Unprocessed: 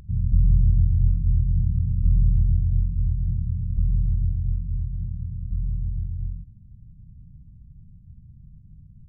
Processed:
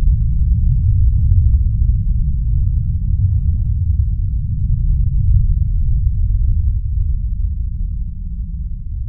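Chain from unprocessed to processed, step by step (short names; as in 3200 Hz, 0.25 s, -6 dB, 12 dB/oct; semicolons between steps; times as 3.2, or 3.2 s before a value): phaser 1.6 Hz, delay 1 ms, feedback 65%; Paulstretch 19×, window 0.05 s, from 4.21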